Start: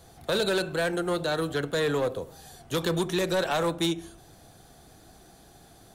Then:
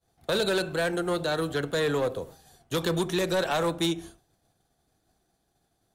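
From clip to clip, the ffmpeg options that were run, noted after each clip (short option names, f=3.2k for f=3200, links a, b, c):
-af "agate=range=-33dB:threshold=-40dB:ratio=3:detection=peak"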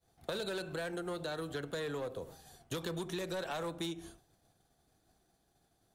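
-af "acompressor=threshold=-36dB:ratio=6,volume=-1dB"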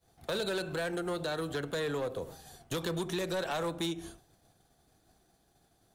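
-af "asoftclip=type=hard:threshold=-34dB,volume=5dB"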